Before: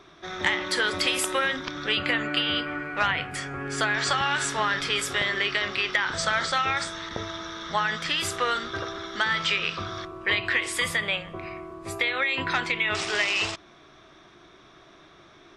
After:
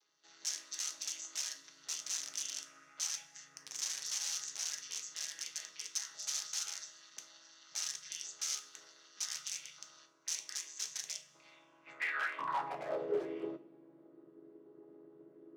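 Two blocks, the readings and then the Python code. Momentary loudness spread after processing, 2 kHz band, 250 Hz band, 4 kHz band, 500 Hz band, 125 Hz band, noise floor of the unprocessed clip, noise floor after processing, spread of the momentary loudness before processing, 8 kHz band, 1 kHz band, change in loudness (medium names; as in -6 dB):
20 LU, -21.0 dB, -18.0 dB, -15.0 dB, -12.5 dB, under -25 dB, -53 dBFS, -64 dBFS, 10 LU, -1.0 dB, -17.0 dB, -13.5 dB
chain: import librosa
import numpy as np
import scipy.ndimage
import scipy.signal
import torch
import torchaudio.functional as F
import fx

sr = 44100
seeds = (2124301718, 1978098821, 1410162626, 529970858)

y = fx.chord_vocoder(x, sr, chord='minor triad', root=49)
y = (np.mod(10.0 ** (20.0 / 20.0) * y + 1.0, 2.0) - 1.0) / 10.0 ** (20.0 / 20.0)
y = fx.filter_sweep_bandpass(y, sr, from_hz=6100.0, to_hz=380.0, start_s=11.2, end_s=13.23, q=5.3)
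y = fx.rev_double_slope(y, sr, seeds[0], early_s=0.3, late_s=1.5, knee_db=-20, drr_db=6.5)
y = F.gain(torch.from_numpy(y), 1.0).numpy()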